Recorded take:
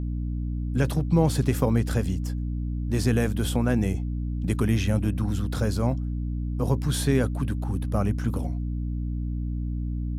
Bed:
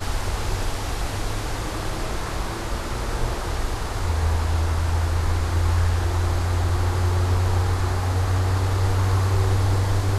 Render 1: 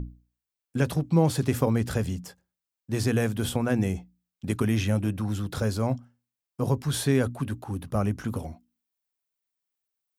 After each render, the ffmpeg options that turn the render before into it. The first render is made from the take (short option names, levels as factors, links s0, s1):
-af "bandreject=f=60:t=h:w=6,bandreject=f=120:t=h:w=6,bandreject=f=180:t=h:w=6,bandreject=f=240:t=h:w=6,bandreject=f=300:t=h:w=6"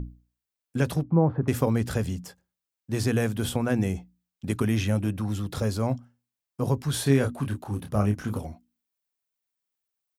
-filter_complex "[0:a]asettb=1/sr,asplit=3[s0][s1][s2];[s0]atrim=end=1.034[s3];[s1]atrim=start=1.03:end=1.48,asetpts=PTS-STARTPTS,afade=t=in:d=0.004:c=qsin,afade=t=out:st=0.446:d=0.004:c=qsin,lowpass=f=1400:w=0.5412,lowpass=f=1400:w=1.3066[s4];[s2]atrim=start=1.476[s5];[s3][s4]acrossfade=d=0.004:c1=hsin:c2=qsin[s6];[s6][s5]acrossfade=d=0.004:c1=qsin:c2=hsin,asettb=1/sr,asplit=3[s7][s8][s9];[s7]atrim=end=5.284[s10];[s8]atrim=start=5.28:end=5.74,asetpts=PTS-STARTPTS,afade=t=in:d=0.004:c=qsin,afade=t=out:st=0.456:d=0.004:c=qsin,bandreject=f=1500:w=10[s11];[s9]atrim=start=5.736[s12];[s10][s11]acrossfade=d=0.004:c1=hsin:c2=qsin[s13];[s13][s12]acrossfade=d=0.004:c1=qsin:c2=hsin,asplit=3[s14][s15][s16];[s14]afade=t=out:st=7.05:d=0.02[s17];[s15]asplit=2[s18][s19];[s19]adelay=29,volume=0.501[s20];[s18][s20]amix=inputs=2:normalize=0,afade=t=in:st=7.05:d=0.02,afade=t=out:st=8.38:d=0.02[s21];[s16]afade=t=in:st=8.38:d=0.02[s22];[s17][s21][s22]amix=inputs=3:normalize=0"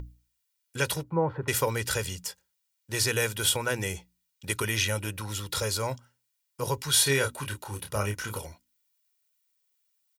-af "tiltshelf=f=940:g=-9,aecho=1:1:2.1:0.61"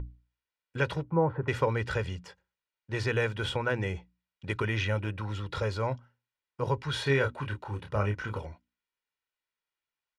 -af "lowpass=2200,lowshelf=f=160:g=3"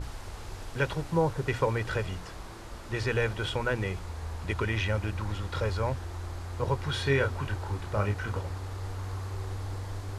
-filter_complex "[1:a]volume=0.168[s0];[0:a][s0]amix=inputs=2:normalize=0"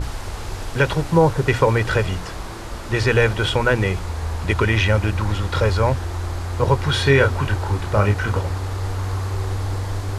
-af "volume=3.76,alimiter=limit=0.708:level=0:latency=1"